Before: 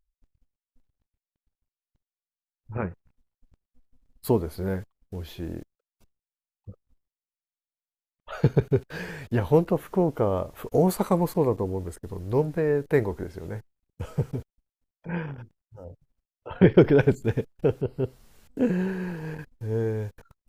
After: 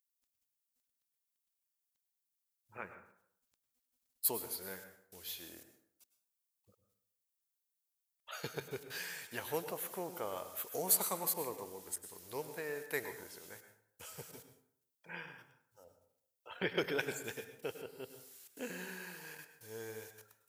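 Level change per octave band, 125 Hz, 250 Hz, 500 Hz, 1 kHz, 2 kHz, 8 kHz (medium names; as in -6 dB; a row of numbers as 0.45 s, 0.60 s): -27.5 dB, -22.5 dB, -18.0 dB, -11.5 dB, -6.0 dB, +7.5 dB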